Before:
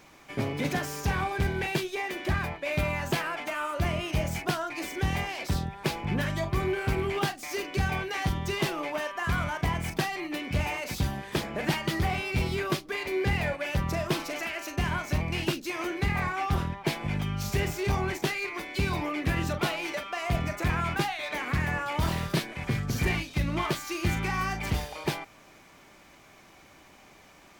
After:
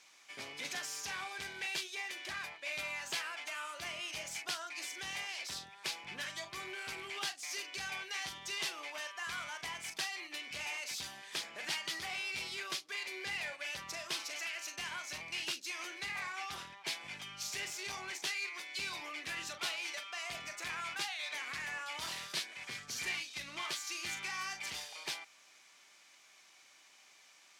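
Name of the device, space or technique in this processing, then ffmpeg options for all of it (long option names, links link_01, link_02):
piezo pickup straight into a mixer: -af "lowpass=6300,aderivative,volume=4dB"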